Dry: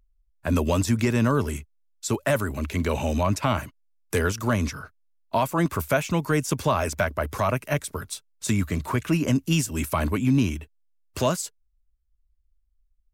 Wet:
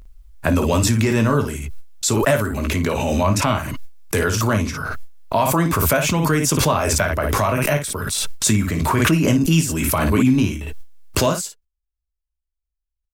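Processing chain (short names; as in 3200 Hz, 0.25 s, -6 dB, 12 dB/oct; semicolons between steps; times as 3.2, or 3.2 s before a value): gate with hold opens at -50 dBFS; early reflections 19 ms -8 dB, 55 ms -8.5 dB; backwards sustainer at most 20 dB/s; gain +3 dB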